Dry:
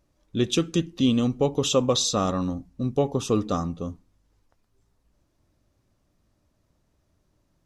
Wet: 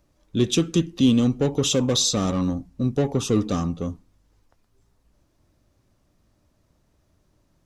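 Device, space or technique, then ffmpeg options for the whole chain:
one-band saturation: -filter_complex "[0:a]acrossover=split=410|3500[link_01][link_02][link_03];[link_02]asoftclip=type=tanh:threshold=-32.5dB[link_04];[link_01][link_04][link_03]amix=inputs=3:normalize=0,volume=4dB"

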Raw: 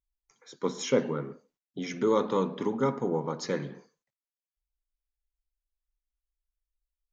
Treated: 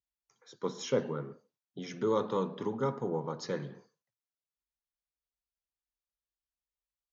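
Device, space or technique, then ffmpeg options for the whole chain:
car door speaker: -af "highpass=82,equalizer=frequency=110:width_type=q:width=4:gain=9,equalizer=frequency=270:width_type=q:width=4:gain=-5,equalizer=frequency=2200:width_type=q:width=4:gain=-6,lowpass=frequency=6600:width=0.5412,lowpass=frequency=6600:width=1.3066,volume=-4dB"

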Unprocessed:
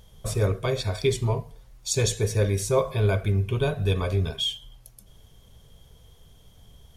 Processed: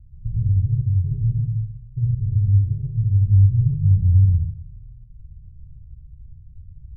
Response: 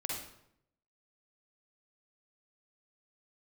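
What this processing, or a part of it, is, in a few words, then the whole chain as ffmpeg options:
club heard from the street: -filter_complex "[0:a]alimiter=limit=-16dB:level=0:latency=1:release=73,lowpass=frequency=130:width=0.5412,lowpass=frequency=130:width=1.3066[link_01];[1:a]atrim=start_sample=2205[link_02];[link_01][link_02]afir=irnorm=-1:irlink=0,volume=9dB"

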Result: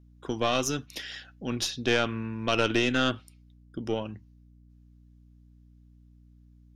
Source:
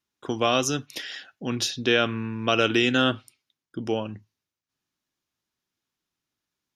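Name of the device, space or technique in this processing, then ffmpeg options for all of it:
valve amplifier with mains hum: -af "aeval=exprs='(tanh(3.55*val(0)+0.65)-tanh(0.65))/3.55':channel_layout=same,aeval=exprs='val(0)+0.002*(sin(2*PI*60*n/s)+sin(2*PI*2*60*n/s)/2+sin(2*PI*3*60*n/s)/3+sin(2*PI*4*60*n/s)/4+sin(2*PI*5*60*n/s)/5)':channel_layout=same"

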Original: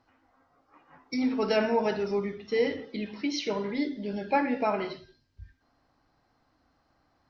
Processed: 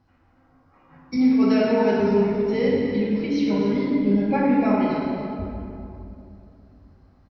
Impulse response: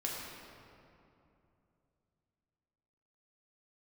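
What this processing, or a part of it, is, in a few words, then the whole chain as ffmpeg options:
cave: -filter_complex "[0:a]asettb=1/sr,asplit=3[link_01][link_02][link_03];[link_01]atrim=end=1.164[link_04];[link_02]atrim=start=1.16:end=2,asetpts=PTS-STARTPTS,afade=type=in:duration=0.004:curve=qsin,afade=type=out:start_time=0.836:duration=0.004:curve=qsin,highpass=180[link_05];[link_03]atrim=start=1.996[link_06];[link_04][link_05]acrossfade=duration=0.004:curve1=hsin:curve2=qsin[link_07];[link_07][link_06]acrossfade=duration=0.004:curve1=qsin:curve2=hsin,asettb=1/sr,asplit=3[link_08][link_09][link_10];[link_08]atrim=end=3.274[link_11];[link_09]atrim=start=3.27:end=4.52,asetpts=PTS-STARTPTS,afade=type=in:duration=0.004:curve=qsin,afade=type=out:start_time=1.246:duration=0.004:curve=qsin,aemphasis=mode=reproduction:type=50fm[link_12];[link_10]atrim=start=4.516[link_13];[link_11][link_12]acrossfade=duration=0.004:curve1=hsin:curve2=qsin[link_14];[link_14][link_13]acrossfade=duration=0.004:curve1=qsin:curve2=hsin,bass=frequency=250:gain=13,treble=frequency=4000:gain=-1,aecho=1:1:274:0.251[link_15];[1:a]atrim=start_sample=2205[link_16];[link_15][link_16]afir=irnorm=-1:irlink=0"

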